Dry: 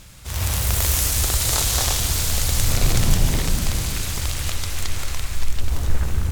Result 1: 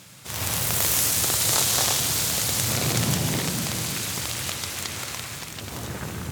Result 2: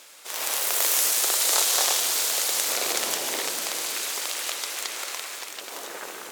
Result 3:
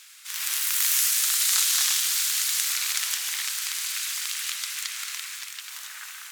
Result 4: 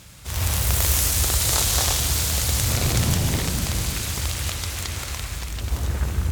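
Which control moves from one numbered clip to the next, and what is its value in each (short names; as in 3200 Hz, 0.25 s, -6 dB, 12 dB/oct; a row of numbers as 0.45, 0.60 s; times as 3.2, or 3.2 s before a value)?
HPF, cutoff: 120, 390, 1400, 48 Hz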